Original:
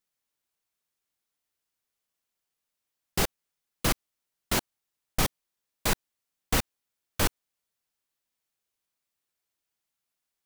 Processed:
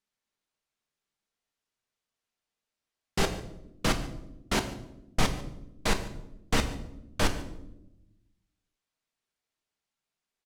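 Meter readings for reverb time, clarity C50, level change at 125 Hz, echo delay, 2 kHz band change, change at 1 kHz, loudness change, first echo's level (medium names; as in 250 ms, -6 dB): 0.90 s, 11.0 dB, +1.0 dB, 145 ms, +0.5 dB, +0.5 dB, -2.0 dB, -20.0 dB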